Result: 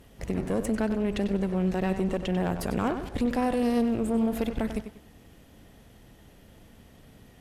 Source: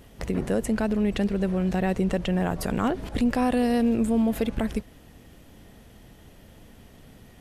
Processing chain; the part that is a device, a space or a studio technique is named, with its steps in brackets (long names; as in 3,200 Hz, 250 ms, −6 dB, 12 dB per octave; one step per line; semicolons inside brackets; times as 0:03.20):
rockabilly slapback (tube saturation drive 19 dB, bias 0.65; tape delay 96 ms, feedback 34%, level −8 dB, low-pass 5,400 Hz)